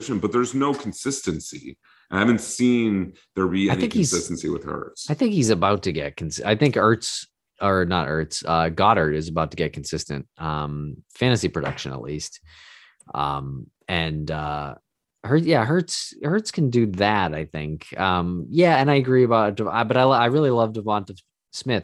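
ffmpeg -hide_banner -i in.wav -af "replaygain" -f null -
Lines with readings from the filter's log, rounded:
track_gain = +1.6 dB
track_peak = 0.529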